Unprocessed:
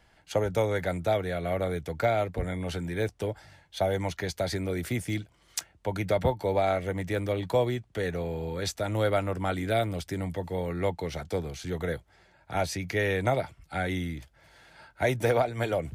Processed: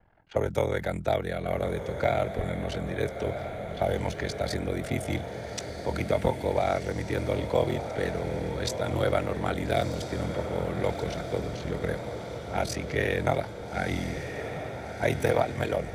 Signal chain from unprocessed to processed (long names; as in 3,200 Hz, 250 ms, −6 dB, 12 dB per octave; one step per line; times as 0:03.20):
low-pass that shuts in the quiet parts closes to 1,200 Hz, open at −26.5 dBFS
ring modulation 21 Hz
feedback delay with all-pass diffusion 1,334 ms, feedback 64%, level −8 dB
level +2.5 dB